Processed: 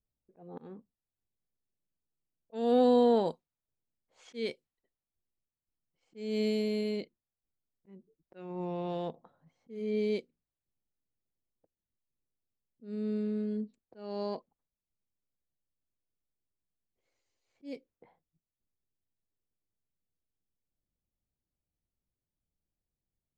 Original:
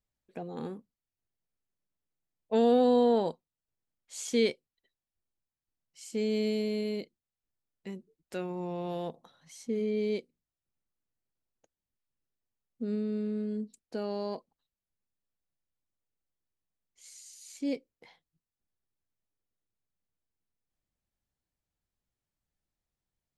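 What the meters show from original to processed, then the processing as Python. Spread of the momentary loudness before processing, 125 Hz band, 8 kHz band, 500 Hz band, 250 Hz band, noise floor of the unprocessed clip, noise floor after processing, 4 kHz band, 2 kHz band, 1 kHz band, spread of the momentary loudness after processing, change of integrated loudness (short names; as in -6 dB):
23 LU, -1.5 dB, under -15 dB, -1.5 dB, -2.0 dB, under -85 dBFS, under -85 dBFS, -3.5 dB, -4.0 dB, -1.0 dB, 22 LU, -0.5 dB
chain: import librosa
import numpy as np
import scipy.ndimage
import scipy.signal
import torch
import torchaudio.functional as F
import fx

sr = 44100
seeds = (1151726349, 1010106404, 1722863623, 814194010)

y = fx.env_lowpass(x, sr, base_hz=560.0, full_db=-27.5)
y = fx.auto_swell(y, sr, attack_ms=275.0)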